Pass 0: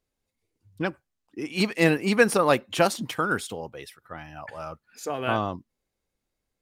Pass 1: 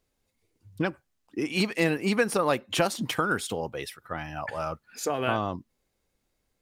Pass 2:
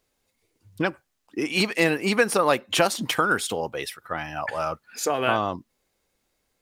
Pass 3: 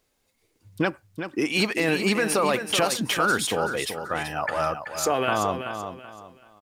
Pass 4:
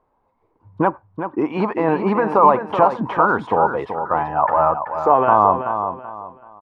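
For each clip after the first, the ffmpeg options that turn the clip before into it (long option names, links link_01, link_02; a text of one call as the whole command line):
ffmpeg -i in.wav -af "acompressor=threshold=-31dB:ratio=2.5,volume=5.5dB" out.wav
ffmpeg -i in.wav -af "lowshelf=frequency=260:gain=-8,volume=5.5dB" out.wav
ffmpeg -i in.wav -af "alimiter=limit=-15dB:level=0:latency=1:release=15,aecho=1:1:381|762|1143:0.376|0.109|0.0316,volume=2dB" out.wav
ffmpeg -i in.wav -af "lowpass=frequency=970:width_type=q:width=5.6,volume=4dB" out.wav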